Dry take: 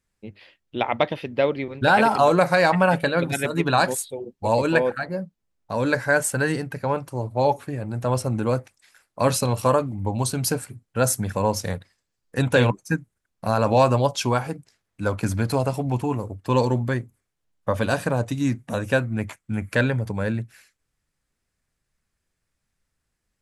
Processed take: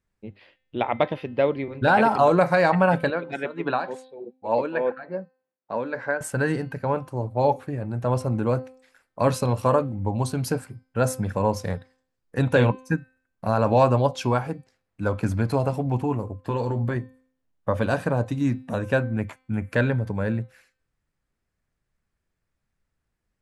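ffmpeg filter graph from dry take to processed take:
ffmpeg -i in.wav -filter_complex "[0:a]asettb=1/sr,asplit=3[link_01][link_02][link_03];[link_01]atrim=end=3.104[link_04];[link_02]atrim=start=3.1:end=6.21,asetpts=PTS-STARTPTS,afade=type=in:duration=0.004:curve=qsin,afade=type=out:start_time=3.106:duration=0.004:curve=qsin,tremolo=f=3.4:d=0.68,highpass=250,lowpass=3500[link_05];[link_03]atrim=start=6.206[link_06];[link_04][link_05]acrossfade=duration=0.004:curve1=hsin:curve2=qsin[link_07];[link_07][link_06]acrossfade=duration=0.004:curve1=qsin:curve2=hsin,asettb=1/sr,asplit=3[link_08][link_09][link_10];[link_08]atrim=end=16.414[link_11];[link_09]atrim=start=16.41:end=16.96,asetpts=PTS-STARTPTS,afade=type=in:duration=0.004:curve=qsin,afade=type=out:start_time=0.546:duration=0.004:curve=qsin,equalizer=frequency=5700:width_type=o:width=0.28:gain=-5.5,acompressor=threshold=-21dB:ratio=4:attack=3.2:release=140:knee=1:detection=peak,asplit=2[link_12][link_13];[link_13]adelay=18,volume=-8dB[link_14];[link_12][link_14]amix=inputs=2:normalize=0,atrim=end_sample=24255[link_15];[link_10]atrim=start=16.956[link_16];[link_11][link_15]acrossfade=duration=0.004:curve1=hsin:curve2=qsin[link_17];[link_17][link_16]acrossfade=duration=0.004:curve1=qsin:curve2=hsin,highshelf=frequency=3100:gain=-11,bandreject=frequency=258.7:width_type=h:width=4,bandreject=frequency=517.4:width_type=h:width=4,bandreject=frequency=776.1:width_type=h:width=4,bandreject=frequency=1034.8:width_type=h:width=4,bandreject=frequency=1293.5:width_type=h:width=4,bandreject=frequency=1552.2:width_type=h:width=4,bandreject=frequency=1810.9:width_type=h:width=4,bandreject=frequency=2069.6:width_type=h:width=4,bandreject=frequency=2328.3:width_type=h:width=4,bandreject=frequency=2587:width_type=h:width=4,bandreject=frequency=2845.7:width_type=h:width=4,bandreject=frequency=3104.4:width_type=h:width=4,bandreject=frequency=3363.1:width_type=h:width=4,bandreject=frequency=3621.8:width_type=h:width=4,bandreject=frequency=3880.5:width_type=h:width=4,bandreject=frequency=4139.2:width_type=h:width=4,bandreject=frequency=4397.9:width_type=h:width=4,bandreject=frequency=4656.6:width_type=h:width=4,bandreject=frequency=4915.3:width_type=h:width=4,bandreject=frequency=5174:width_type=h:width=4" out.wav

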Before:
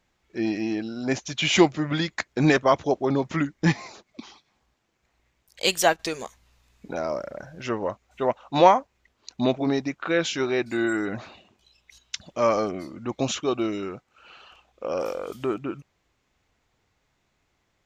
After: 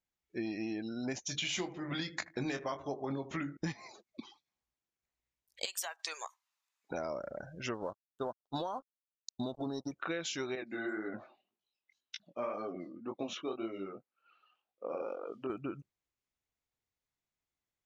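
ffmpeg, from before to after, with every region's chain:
ffmpeg -i in.wav -filter_complex "[0:a]asettb=1/sr,asplit=3[link_01][link_02][link_03];[link_01]atrim=end=1.224[link_04];[link_02]atrim=start=1.22:end=3.57,asetpts=PTS-STARTPTS,afade=type=in:duration=0.004:curve=qsin,afade=type=out:start_time=2.346:duration=0.004:curve=qsin,bandreject=frequency=50:width_type=h:width=6,bandreject=frequency=100:width_type=h:width=6,bandreject=frequency=150:width_type=h:width=6,bandreject=frequency=200:width_type=h:width=6,bandreject=frequency=250:width_type=h:width=6,bandreject=frequency=300:width_type=h:width=6,bandreject=frequency=350:width_type=h:width=6,bandreject=frequency=400:width_type=h:width=6,bandreject=frequency=450:width_type=h:width=6,bandreject=frequency=500:width_type=h:width=6,asplit=2[link_05][link_06];[link_06]adelay=22,volume=-8.5dB[link_07];[link_05][link_07]amix=inputs=2:normalize=0,atrim=end_sample=103635,asplit=2[link_08][link_09];[link_09]adelay=78,lowpass=frequency=2100:poles=1,volume=-17dB,asplit=2[link_10][link_11];[link_11]adelay=78,lowpass=frequency=2100:poles=1,volume=0.52,asplit=2[link_12][link_13];[link_13]adelay=78,lowpass=frequency=2100:poles=1,volume=0.52,asplit=2[link_14][link_15];[link_15]adelay=78,lowpass=frequency=2100:poles=1,volume=0.52,asplit=2[link_16][link_17];[link_17]adelay=78,lowpass=frequency=2100:poles=1,volume=0.52[link_18];[link_08][link_10][link_12][link_14][link_16][link_18]amix=inputs=6:normalize=0,atrim=end_sample=103635[link_19];[link_03]atrim=start=3.566[link_20];[link_04][link_19]acrossfade=duration=0.004:curve1=hsin:curve2=qsin[link_21];[link_21][link_20]acrossfade=duration=0.004:curve1=qsin:curve2=hsin,asettb=1/sr,asplit=3[link_22][link_23][link_24];[link_22]atrim=end=5.654[link_25];[link_23]atrim=start=5.65:end=6.91,asetpts=PTS-STARTPTS,afade=type=in:duration=0.004:curve=qsin,afade=type=out:start_time=1.256:duration=0.004:curve=qsin,highpass=frequency=990:width_type=q:width=1.6,acompressor=threshold=-28dB:ratio=6:attack=3.2:release=140:knee=1:detection=peak[link_26];[link_24]atrim=start=6.906[link_27];[link_25][link_26]acrossfade=duration=0.004:curve1=hsin:curve2=qsin[link_28];[link_28][link_27]acrossfade=duration=0.004:curve1=qsin:curve2=hsin,asettb=1/sr,asplit=3[link_29][link_30][link_31];[link_29]atrim=end=7.744[link_32];[link_30]atrim=start=7.74:end=9.92,asetpts=PTS-STARTPTS,afade=type=in:duration=0.004:curve=qsin,afade=type=out:start_time=2.176:duration=0.004:curve=qsin,acompressor=threshold=-18dB:ratio=6:attack=3.2:release=140:knee=1:detection=peak,aeval=exprs='sgn(val(0))*max(abs(val(0))-0.01,0)':channel_layout=same,asuperstop=centerf=2200:order=4:qfactor=1.4[link_33];[link_31]atrim=start=9.916[link_34];[link_32][link_33]acrossfade=duration=0.004:curve1=hsin:curve2=qsin[link_35];[link_35][link_34]acrossfade=duration=0.004:curve1=qsin:curve2=hsin,asettb=1/sr,asplit=3[link_36][link_37][link_38];[link_36]atrim=end=10.554[link_39];[link_37]atrim=start=10.55:end=15.5,asetpts=PTS-STARTPTS,afade=type=in:duration=0.004:curve=qsin,afade=type=out:start_time=4.946:duration=0.004:curve=qsin,highshelf=frequency=3000:gain=-5.5,flanger=delay=17:depth=7.7:speed=1.9,highpass=200,lowpass=4800[link_40];[link_38]atrim=start=15.496[link_41];[link_39][link_40]acrossfade=duration=0.004:curve1=hsin:curve2=qsin[link_42];[link_42][link_41]acrossfade=duration=0.004:curve1=qsin:curve2=hsin,afftdn=noise_reduction=19:noise_floor=-44,highshelf=frequency=4500:gain=9.5,acompressor=threshold=-28dB:ratio=12,volume=-5.5dB" out.wav

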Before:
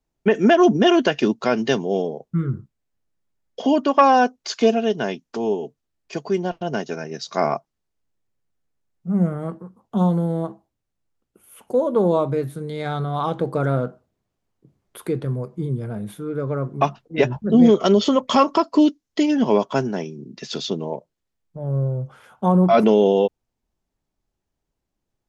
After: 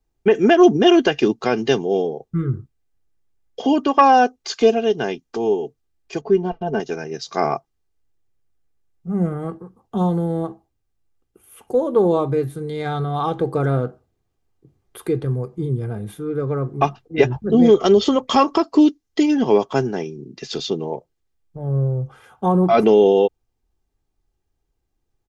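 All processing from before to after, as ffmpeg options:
ffmpeg -i in.wav -filter_complex "[0:a]asettb=1/sr,asplit=3[link_01][link_02][link_03];[link_01]atrim=end=6.214[link_04];[link_02]atrim=start=6.21:end=6.8,asetpts=PTS-STARTPTS,afade=type=in:duration=0.004:curve=qsin,afade=type=out:start_time=0.586:duration=0.004:curve=qsin,lowpass=frequency=1100:poles=1,aecho=1:1:4.6:0.8,atrim=end_sample=26019[link_05];[link_03]atrim=start=6.796[link_06];[link_04][link_05]acrossfade=duration=0.004:curve1=hsin:curve2=qsin[link_07];[link_07][link_06]acrossfade=duration=0.004:curve1=qsin:curve2=hsin,lowshelf=frequency=170:gain=6,aecho=1:1:2.5:0.44" out.wav

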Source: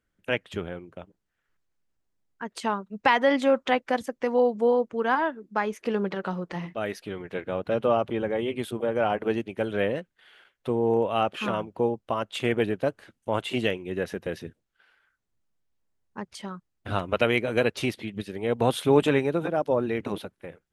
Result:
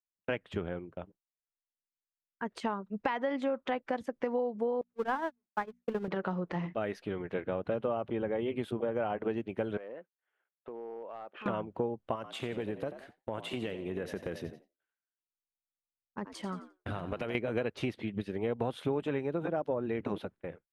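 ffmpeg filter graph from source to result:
ffmpeg -i in.wav -filter_complex "[0:a]asettb=1/sr,asplit=3[link_01][link_02][link_03];[link_01]atrim=end=4.814[link_04];[link_02]atrim=start=4.81:end=6.08,asetpts=PTS-STARTPTS,afade=type=in:duration=0.004:curve=qsin,afade=type=out:start_time=1.266:duration=0.004:curve=qsin,aeval=exprs='val(0)+0.5*0.0355*sgn(val(0))':channel_layout=same,agate=range=-56dB:threshold=-23dB:ratio=16:release=100:detection=peak,bandreject=frequency=60:width_type=h:width=6,bandreject=frequency=120:width_type=h:width=6,bandreject=frequency=180:width_type=h:width=6,bandreject=frequency=240:width_type=h:width=6[link_05];[link_03]atrim=start=6.076[link_06];[link_04][link_05]acrossfade=duration=0.004:curve1=hsin:curve2=qsin[link_07];[link_07][link_06]acrossfade=duration=0.004:curve1=qsin:curve2=hsin,asettb=1/sr,asplit=3[link_08][link_09][link_10];[link_08]atrim=end=9.774[link_11];[link_09]atrim=start=9.77:end=11.46,asetpts=PTS-STARTPTS,afade=type=in:duration=0.004:curve=qsin,afade=type=out:start_time=1.686:duration=0.004:curve=qsin,highpass=380,lowpass=2000,acompressor=threshold=-39dB:ratio=8:attack=3.2:release=140:knee=1:detection=peak,aeval=exprs='clip(val(0),-1,0.0168)':channel_layout=same[link_12];[link_10]atrim=start=11.456[link_13];[link_11][link_12]acrossfade=duration=0.004:curve1=hsin:curve2=qsin[link_14];[link_14][link_13]acrossfade=duration=0.004:curve1=qsin:curve2=hsin,asettb=1/sr,asplit=3[link_15][link_16][link_17];[link_15]atrim=end=12.154[link_18];[link_16]atrim=start=12.15:end=17.35,asetpts=PTS-STARTPTS,afade=type=in:duration=0.004:curve=qsin,afade=type=out:start_time=5.196:duration=0.004:curve=qsin,highshelf=frequency=7100:gain=12,acompressor=threshold=-31dB:ratio=5:attack=3.2:release=140:knee=1:detection=peak,asplit=5[link_19][link_20][link_21][link_22][link_23];[link_20]adelay=88,afreqshift=60,volume=-12dB[link_24];[link_21]adelay=176,afreqshift=120,volume=-19.1dB[link_25];[link_22]adelay=264,afreqshift=180,volume=-26.3dB[link_26];[link_23]adelay=352,afreqshift=240,volume=-33.4dB[link_27];[link_19][link_24][link_25][link_26][link_27]amix=inputs=5:normalize=0,atrim=end_sample=229320[link_28];[link_17]atrim=start=17.346[link_29];[link_18][link_28]acrossfade=duration=0.004:curve1=hsin:curve2=qsin[link_30];[link_30][link_29]acrossfade=duration=0.004:curve1=qsin:curve2=hsin,agate=range=-33dB:threshold=-44dB:ratio=3:detection=peak,lowpass=frequency=1800:poles=1,acompressor=threshold=-29dB:ratio=6" out.wav

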